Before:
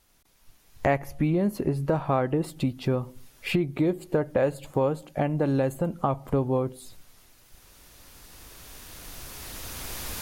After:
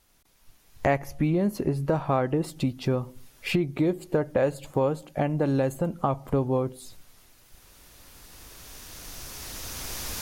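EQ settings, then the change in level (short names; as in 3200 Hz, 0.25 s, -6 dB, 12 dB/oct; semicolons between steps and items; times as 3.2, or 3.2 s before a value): dynamic EQ 5800 Hz, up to +5 dB, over -55 dBFS, Q 1.9; 0.0 dB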